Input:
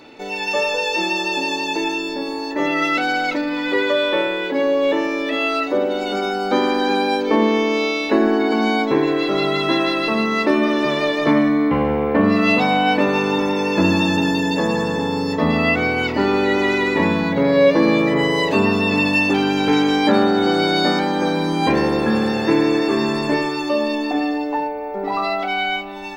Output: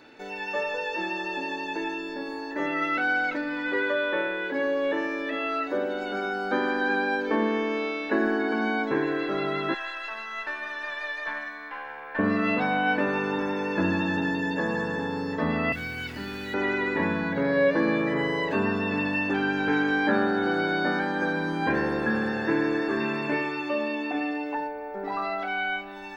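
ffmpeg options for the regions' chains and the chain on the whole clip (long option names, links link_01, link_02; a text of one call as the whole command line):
ffmpeg -i in.wav -filter_complex "[0:a]asettb=1/sr,asplit=3[link_01][link_02][link_03];[link_01]atrim=end=9.744[link_04];[link_02]atrim=start=9.74:end=12.19,asetpts=PTS-STARTPTS,afade=type=in:duration=0.004:curve=qsin,afade=type=out:start_time=2.446:duration=0.004:curve=qsin,highpass=1000,aecho=1:1:1.2:0.34,atrim=end_sample=108045,aeval=exprs='(tanh(3.55*val(0)+0.6)-tanh(0.6))/3.55':channel_layout=same[link_05];[link_03]atrim=start=12.186[link_06];[link_04][link_05]acrossfade=duration=0.004:curve1=hsin:curve2=qsin[link_07];[link_07][link_06]acrossfade=duration=0.004:curve1=qsin:curve2=hsin,asettb=1/sr,asplit=3[link_08][link_09][link_10];[link_08]atrim=end=15.724[link_11];[link_09]atrim=start=15.72:end=16.54,asetpts=PTS-STARTPTS,afade=type=in:duration=0.004:curve=qsin,afade=type=out:start_time=0.816:duration=0.004:curve=qsin,highshelf=frequency=2500:gain=11,acrossover=split=200|3000[link_12][link_13][link_14];[link_13]acompressor=threshold=-43dB:ratio=2:attack=3.2:release=140:knee=2.83:detection=peak[link_15];[link_12][link_15][link_14]amix=inputs=3:normalize=0,acrusher=bits=6:dc=4:mix=0:aa=0.000001[link_16];[link_10]atrim=start=16.536[link_17];[link_11][link_16]acrossfade=duration=0.004:curve1=hsin:curve2=qsin[link_18];[link_18][link_17]acrossfade=duration=0.004:curve1=qsin:curve2=hsin,asettb=1/sr,asplit=3[link_19][link_20][link_21];[link_19]atrim=end=23.004[link_22];[link_20]atrim=start=23:end=24.55,asetpts=PTS-STARTPTS,afade=type=in:duration=0.004:curve=qsin,afade=type=out:start_time=1.546:duration=0.004:curve=qsin,highpass=55,equalizer=frequency=2500:width=1.9:gain=9,bandreject=frequency=1700:width=9.2[link_23];[link_21]atrim=start=24.546[link_24];[link_22][link_23]acrossfade=duration=0.004:curve1=hsin:curve2=qsin[link_25];[link_25][link_24]acrossfade=duration=0.004:curve1=qsin:curve2=hsin,acrossover=split=3000[link_26][link_27];[link_27]acompressor=threshold=-42dB:ratio=4:attack=1:release=60[link_28];[link_26][link_28]amix=inputs=2:normalize=0,equalizer=frequency=1600:width_type=o:width=0.27:gain=13.5,volume=-9dB" out.wav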